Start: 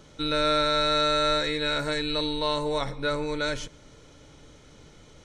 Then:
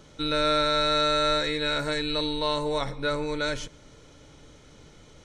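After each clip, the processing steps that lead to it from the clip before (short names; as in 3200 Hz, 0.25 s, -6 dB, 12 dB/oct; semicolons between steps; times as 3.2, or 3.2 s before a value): nothing audible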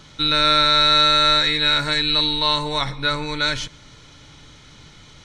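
graphic EQ 125/500/1000/2000/4000 Hz +4/-7/+4/+4/+8 dB; gain +3.5 dB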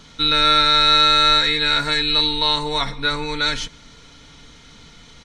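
comb 4.3 ms, depth 47%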